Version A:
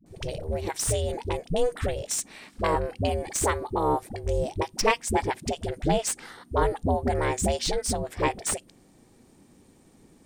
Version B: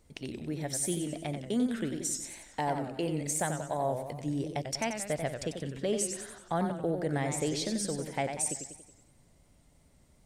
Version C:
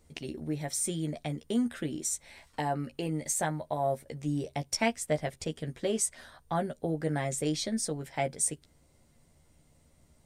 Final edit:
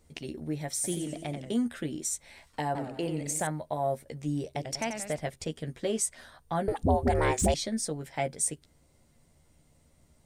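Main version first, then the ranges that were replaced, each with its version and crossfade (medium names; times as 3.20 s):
C
0.84–1.52 s: from B
2.75–3.47 s: from B
4.55–5.19 s: from B
6.68–7.54 s: from A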